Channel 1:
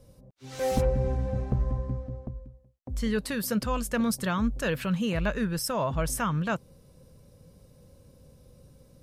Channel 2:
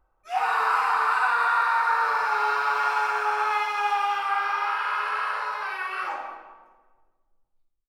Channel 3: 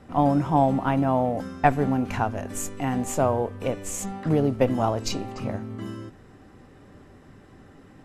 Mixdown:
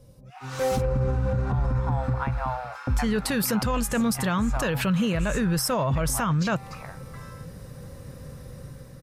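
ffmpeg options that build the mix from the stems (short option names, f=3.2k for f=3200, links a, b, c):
-filter_complex "[0:a]volume=1.5dB[a];[1:a]highpass=950,volume=-16dB[b];[2:a]highpass=f=900:w=0.5412,highpass=f=900:w=1.3066,highshelf=f=8.8k:g=-11,bandreject=f=3k:w=5.5,adelay=1350,volume=-8.5dB[c];[a][c]amix=inputs=2:normalize=0,dynaudnorm=f=260:g=7:m=10.5dB,alimiter=limit=-12dB:level=0:latency=1:release=37,volume=0dB[d];[b][d]amix=inputs=2:normalize=0,equalizer=f=130:t=o:w=0.45:g=6,alimiter=limit=-17dB:level=0:latency=1:release=123"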